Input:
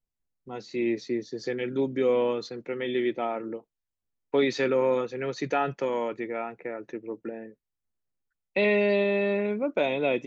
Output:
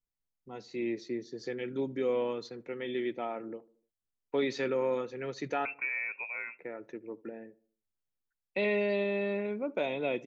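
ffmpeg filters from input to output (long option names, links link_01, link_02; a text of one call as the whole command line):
ffmpeg -i in.wav -filter_complex "[0:a]asettb=1/sr,asplit=3[link_01][link_02][link_03];[link_01]atrim=end=5.654[link_04];[link_02]atrim=start=5.65:end=6.59,asetpts=PTS-STARTPTS,afade=type=in:duration=0.004:curve=qsin,afade=type=out:start_time=0.936:duration=0.004:curve=qsin,lowpass=frequency=2400:width_type=q:width=0.5098,lowpass=frequency=2400:width_type=q:width=0.6013,lowpass=frequency=2400:width_type=q:width=0.9,lowpass=frequency=2400:width_type=q:width=2.563,afreqshift=-2800[link_05];[link_03]atrim=start=6.586[link_06];[link_04][link_05]acrossfade=duration=0.004:curve1=hsin:curve2=qsin[link_07];[link_07][link_06]acrossfade=duration=0.004:curve1=qsin:curve2=hsin,asplit=2[link_08][link_09];[link_09]adelay=75,lowpass=frequency=1200:poles=1,volume=-21dB,asplit=2[link_10][link_11];[link_11]adelay=75,lowpass=frequency=1200:poles=1,volume=0.5,asplit=2[link_12][link_13];[link_13]adelay=75,lowpass=frequency=1200:poles=1,volume=0.5,asplit=2[link_14][link_15];[link_15]adelay=75,lowpass=frequency=1200:poles=1,volume=0.5[link_16];[link_10][link_12][link_14][link_16]amix=inputs=4:normalize=0[link_17];[link_08][link_17]amix=inputs=2:normalize=0,volume=-6.5dB" out.wav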